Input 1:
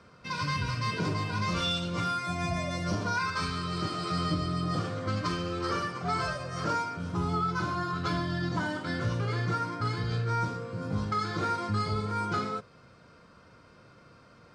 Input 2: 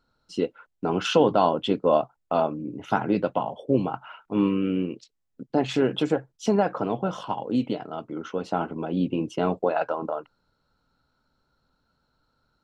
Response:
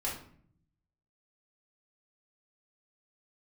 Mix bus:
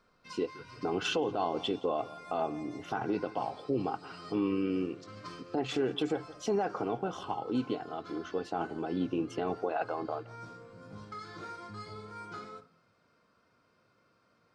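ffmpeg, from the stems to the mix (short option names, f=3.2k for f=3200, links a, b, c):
-filter_complex "[0:a]highpass=f=190:p=1,volume=-14.5dB,asplit=2[a][b];[b]volume=-11dB[c];[1:a]aecho=1:1:2.6:0.45,volume=-6dB,asplit=3[d][e][f];[e]volume=-22dB[g];[f]apad=whole_len=641545[h];[a][h]sidechaincompress=threshold=-49dB:ratio=3:attack=23:release=257[i];[2:a]atrim=start_sample=2205[j];[c][j]afir=irnorm=-1:irlink=0[k];[g]aecho=0:1:171|342|513|684|855:1|0.39|0.152|0.0593|0.0231[l];[i][d][k][l]amix=inputs=4:normalize=0,alimiter=limit=-21.5dB:level=0:latency=1:release=56"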